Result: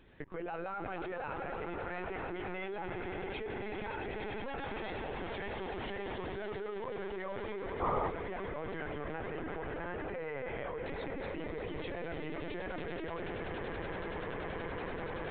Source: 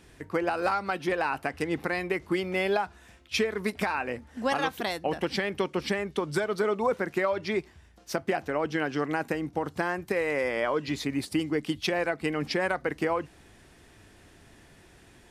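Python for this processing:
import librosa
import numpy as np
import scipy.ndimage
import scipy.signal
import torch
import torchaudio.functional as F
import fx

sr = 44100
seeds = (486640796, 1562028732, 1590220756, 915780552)

y = fx.air_absorb(x, sr, metres=63.0)
y = fx.echo_swell(y, sr, ms=95, loudest=8, wet_db=-11.5)
y = fx.level_steps(y, sr, step_db=21)
y = fx.spec_paint(y, sr, seeds[0], shape='noise', start_s=7.8, length_s=0.3, low_hz=230.0, high_hz=1300.0, level_db=-35.0)
y = fx.lpc_vocoder(y, sr, seeds[1], excitation='pitch_kept', order=16)
y = F.gain(torch.from_numpy(y), 2.5).numpy()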